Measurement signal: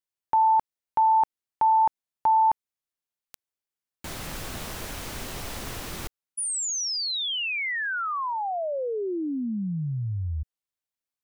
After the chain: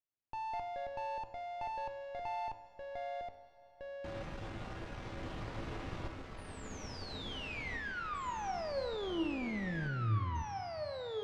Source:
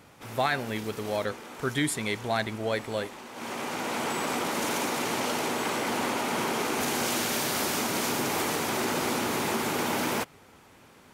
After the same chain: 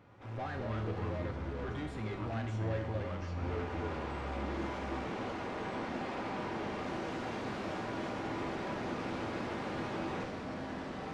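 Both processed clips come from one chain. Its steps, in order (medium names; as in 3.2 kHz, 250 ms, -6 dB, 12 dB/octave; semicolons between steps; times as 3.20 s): valve stage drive 34 dB, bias 0.6; feedback comb 110 Hz, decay 0.6 s, harmonics odd, mix 80%; Schroeder reverb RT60 4 s, combs from 33 ms, DRR 12.5 dB; ever faster or slower copies 116 ms, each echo -4 st, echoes 2; tape spacing loss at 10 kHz 31 dB; trim +10.5 dB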